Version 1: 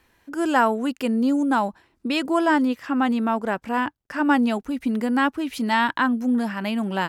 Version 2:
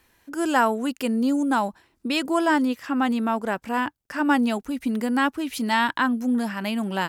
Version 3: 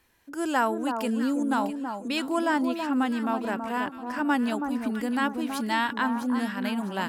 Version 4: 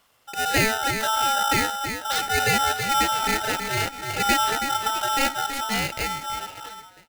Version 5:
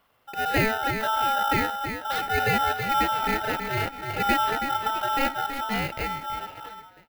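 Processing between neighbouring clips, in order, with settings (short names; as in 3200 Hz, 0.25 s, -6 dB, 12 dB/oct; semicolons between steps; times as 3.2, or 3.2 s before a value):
high shelf 4900 Hz +7.5 dB; gain -1.5 dB
echo with dull and thin repeats by turns 0.326 s, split 1300 Hz, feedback 58%, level -6 dB; gain -4.5 dB
ending faded out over 1.86 s; polarity switched at an audio rate 1100 Hz; gain +3.5 dB
bell 7300 Hz -15 dB 1.8 oct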